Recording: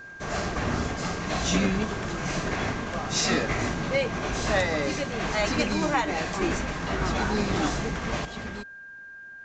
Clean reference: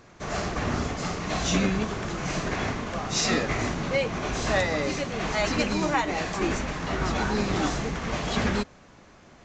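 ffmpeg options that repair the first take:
ffmpeg -i in.wav -af "bandreject=frequency=1600:width=30,asetnsamples=nb_out_samples=441:pad=0,asendcmd='8.25 volume volume 11dB',volume=0dB" out.wav

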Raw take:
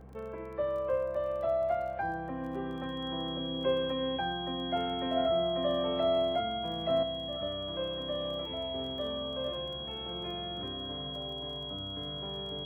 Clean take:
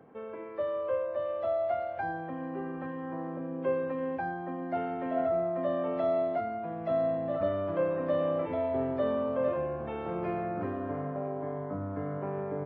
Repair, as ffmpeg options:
ffmpeg -i in.wav -af "adeclick=threshold=4,bandreject=frequency=65.3:width_type=h:width=4,bandreject=frequency=130.6:width_type=h:width=4,bandreject=frequency=195.9:width_type=h:width=4,bandreject=frequency=3300:width=30,asetnsamples=nb_out_samples=441:pad=0,asendcmd='7.03 volume volume 7.5dB',volume=0dB" out.wav

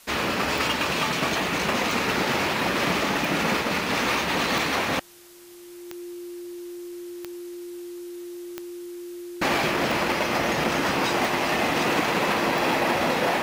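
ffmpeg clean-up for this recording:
ffmpeg -i in.wav -af "adeclick=threshold=4,bandreject=frequency=350:width=30,afwtdn=0.0032" out.wav

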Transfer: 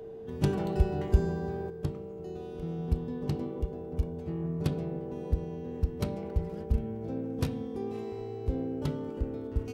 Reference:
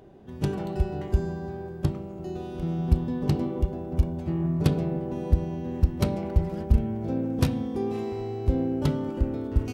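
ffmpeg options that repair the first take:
ffmpeg -i in.wav -af "bandreject=frequency=450:width=30,asetnsamples=nb_out_samples=441:pad=0,asendcmd='1.7 volume volume 7.5dB',volume=0dB" out.wav

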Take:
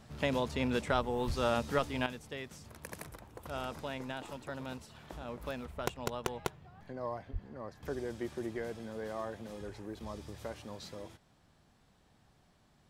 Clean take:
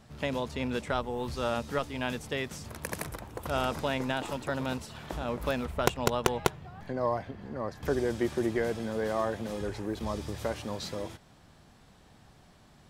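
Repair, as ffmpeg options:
ffmpeg -i in.wav -filter_complex "[0:a]asplit=3[link_01][link_02][link_03];[link_01]afade=type=out:start_time=1.26:duration=0.02[link_04];[link_02]highpass=frequency=140:width=0.5412,highpass=frequency=140:width=1.3066,afade=type=in:start_time=1.26:duration=0.02,afade=type=out:start_time=1.38:duration=0.02[link_05];[link_03]afade=type=in:start_time=1.38:duration=0.02[link_06];[link_04][link_05][link_06]amix=inputs=3:normalize=0,asplit=3[link_07][link_08][link_09];[link_07]afade=type=out:start_time=7.32:duration=0.02[link_10];[link_08]highpass=frequency=140:width=0.5412,highpass=frequency=140:width=1.3066,afade=type=in:start_time=7.32:duration=0.02,afade=type=out:start_time=7.44:duration=0.02[link_11];[link_09]afade=type=in:start_time=7.44:duration=0.02[link_12];[link_10][link_11][link_12]amix=inputs=3:normalize=0,asetnsamples=nb_out_samples=441:pad=0,asendcmd='2.06 volume volume 9.5dB',volume=0dB" out.wav

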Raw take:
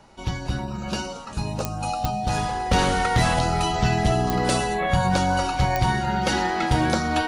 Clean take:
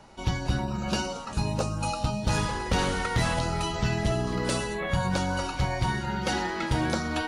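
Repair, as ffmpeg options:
ffmpeg -i in.wav -af "adeclick=threshold=4,bandreject=frequency=740:width=30,asetnsamples=nb_out_samples=441:pad=0,asendcmd='2.71 volume volume -5dB',volume=0dB" out.wav

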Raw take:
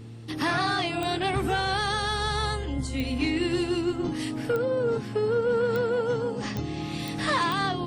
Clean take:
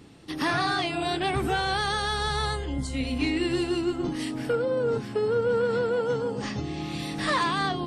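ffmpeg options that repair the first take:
ffmpeg -i in.wav -af "adeclick=threshold=4,bandreject=frequency=114.3:width_type=h:width=4,bandreject=frequency=228.6:width_type=h:width=4,bandreject=frequency=342.9:width_type=h:width=4,bandreject=frequency=457.2:width_type=h:width=4" out.wav

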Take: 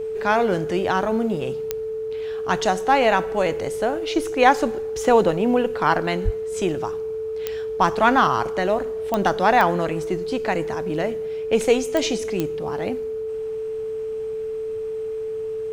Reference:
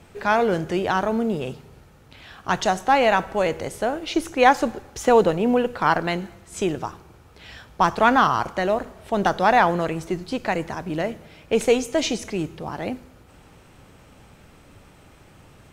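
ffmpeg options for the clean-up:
ffmpeg -i in.wav -filter_complex "[0:a]adeclick=threshold=4,bandreject=frequency=440:width=30,asplit=3[link_01][link_02][link_03];[link_01]afade=type=out:start_time=6.24:duration=0.02[link_04];[link_02]highpass=frequency=140:width=0.5412,highpass=frequency=140:width=1.3066,afade=type=in:start_time=6.24:duration=0.02,afade=type=out:start_time=6.36:duration=0.02[link_05];[link_03]afade=type=in:start_time=6.36:duration=0.02[link_06];[link_04][link_05][link_06]amix=inputs=3:normalize=0" out.wav

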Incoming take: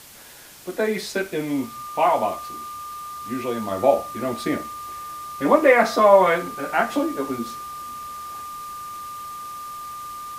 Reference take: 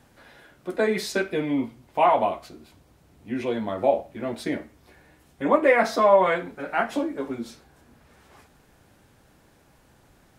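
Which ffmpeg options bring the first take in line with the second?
ffmpeg -i in.wav -af "bandreject=frequency=1200:width=30,afwtdn=0.0063,asetnsamples=nb_out_samples=441:pad=0,asendcmd='3.71 volume volume -3.5dB',volume=0dB" out.wav

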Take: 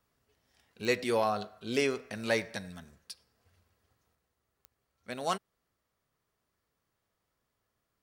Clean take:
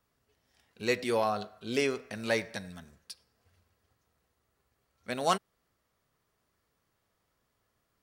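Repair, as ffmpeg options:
ffmpeg -i in.wav -af "adeclick=threshold=4,asetnsamples=nb_out_samples=441:pad=0,asendcmd='4.15 volume volume 4.5dB',volume=0dB" out.wav

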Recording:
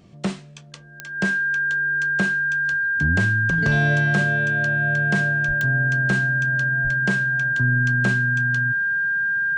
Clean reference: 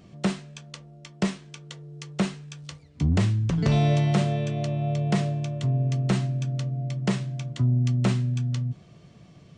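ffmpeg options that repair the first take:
ffmpeg -i in.wav -filter_complex "[0:a]adeclick=threshold=4,bandreject=frequency=1600:width=30,asplit=3[link_01][link_02][link_03];[link_01]afade=type=out:start_time=5.47:duration=0.02[link_04];[link_02]highpass=frequency=140:width=0.5412,highpass=frequency=140:width=1.3066,afade=type=in:start_time=5.47:duration=0.02,afade=type=out:start_time=5.59:duration=0.02[link_05];[link_03]afade=type=in:start_time=5.59:duration=0.02[link_06];[link_04][link_05][link_06]amix=inputs=3:normalize=0,asplit=3[link_07][link_08][link_09];[link_07]afade=type=out:start_time=6.83:duration=0.02[link_10];[link_08]highpass=frequency=140:width=0.5412,highpass=frequency=140:width=1.3066,afade=type=in:start_time=6.83:duration=0.02,afade=type=out:start_time=6.95:duration=0.02[link_11];[link_09]afade=type=in:start_time=6.95:duration=0.02[link_12];[link_10][link_11][link_12]amix=inputs=3:normalize=0" out.wav

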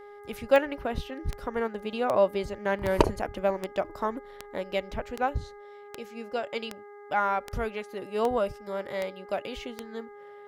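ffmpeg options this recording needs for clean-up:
ffmpeg -i in.wav -af "adeclick=threshold=4,bandreject=frequency=410.2:width_type=h:width=4,bandreject=frequency=820.4:width_type=h:width=4,bandreject=frequency=1230.6:width_type=h:width=4,bandreject=frequency=1640.8:width_type=h:width=4,bandreject=frequency=2051:width_type=h:width=4" out.wav

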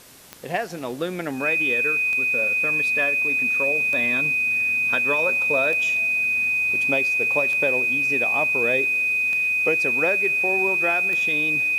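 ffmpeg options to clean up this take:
ffmpeg -i in.wav -af "adeclick=threshold=4,bandreject=frequency=2500:width=30,afwtdn=0.0045" out.wav

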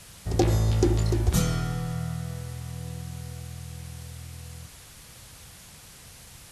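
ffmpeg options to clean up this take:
ffmpeg -i in.wav -af "afwtdn=0.0045" out.wav

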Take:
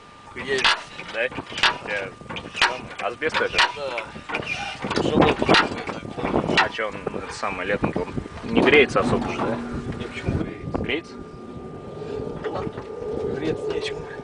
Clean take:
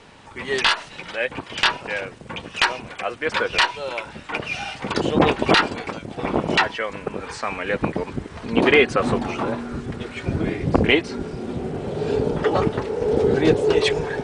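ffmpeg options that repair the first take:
ffmpeg -i in.wav -af "bandreject=frequency=1200:width=30,asetnsamples=nb_out_samples=441:pad=0,asendcmd='10.42 volume volume 8.5dB',volume=0dB" out.wav

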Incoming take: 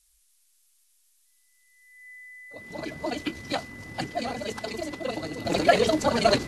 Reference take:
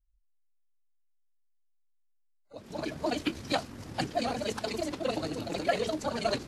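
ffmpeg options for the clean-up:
ffmpeg -i in.wav -af "bandreject=frequency=2000:width=30,agate=range=-21dB:threshold=-57dB,asetnsamples=nb_out_samples=441:pad=0,asendcmd='5.45 volume volume -9dB',volume=0dB" out.wav

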